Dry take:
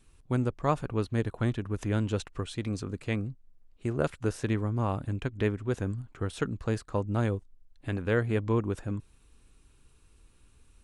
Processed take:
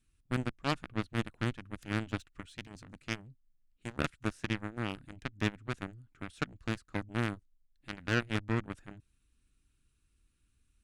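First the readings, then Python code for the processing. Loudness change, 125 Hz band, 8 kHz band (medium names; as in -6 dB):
-5.5 dB, -8.0 dB, -4.5 dB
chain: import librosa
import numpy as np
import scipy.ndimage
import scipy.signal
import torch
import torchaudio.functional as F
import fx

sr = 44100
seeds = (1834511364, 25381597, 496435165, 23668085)

y = fx.cheby_harmonics(x, sr, harmonics=(7,), levels_db=(-15,), full_scale_db=-11.5)
y = fx.band_shelf(y, sr, hz=650.0, db=-9.0, octaves=1.7)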